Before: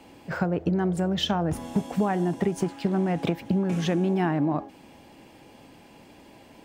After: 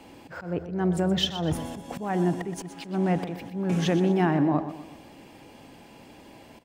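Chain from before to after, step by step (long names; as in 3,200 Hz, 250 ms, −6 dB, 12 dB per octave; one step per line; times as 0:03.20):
volume swells 205 ms
repeating echo 123 ms, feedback 43%, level −12 dB
level +1.5 dB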